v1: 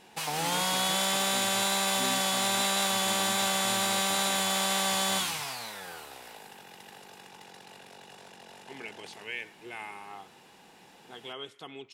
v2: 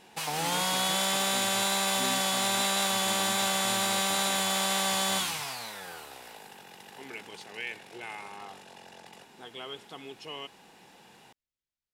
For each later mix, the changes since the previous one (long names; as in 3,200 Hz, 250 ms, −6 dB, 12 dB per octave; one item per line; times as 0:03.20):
second voice: entry −1.70 s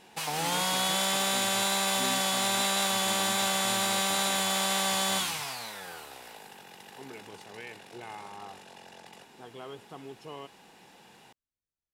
second voice: remove meter weighting curve D